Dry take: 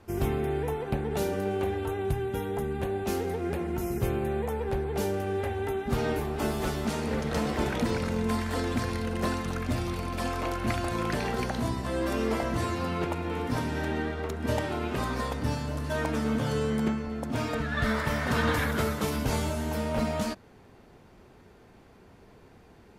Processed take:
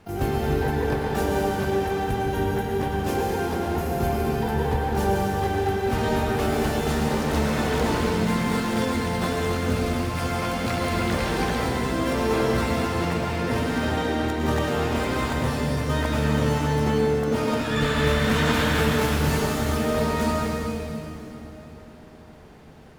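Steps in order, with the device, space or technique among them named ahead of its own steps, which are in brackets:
shimmer-style reverb (pitch-shifted copies added +12 semitones −4 dB; convolution reverb RT60 3.6 s, pre-delay 94 ms, DRR −1.5 dB)

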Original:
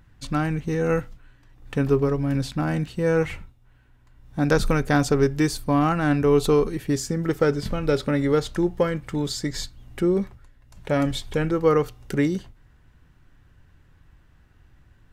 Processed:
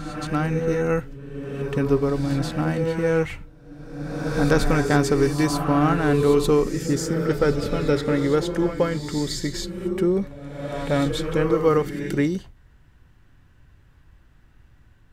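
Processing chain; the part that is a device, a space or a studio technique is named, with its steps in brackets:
reverse reverb (reversed playback; convolution reverb RT60 1.6 s, pre-delay 114 ms, DRR 5 dB; reversed playback)

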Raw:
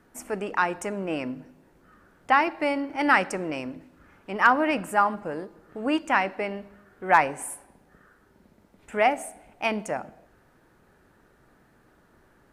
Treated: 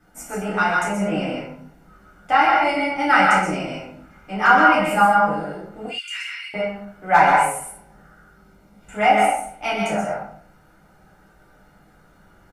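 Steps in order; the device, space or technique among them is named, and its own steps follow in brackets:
microphone above a desk (comb filter 1.4 ms, depth 52%; convolution reverb RT60 0.50 s, pre-delay 118 ms, DRR 0.5 dB)
0:05.86–0:06.54: inverse Chebyshev high-pass filter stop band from 710 Hz, stop band 60 dB
reverb whose tail is shaped and stops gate 140 ms falling, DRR −7.5 dB
level −5 dB

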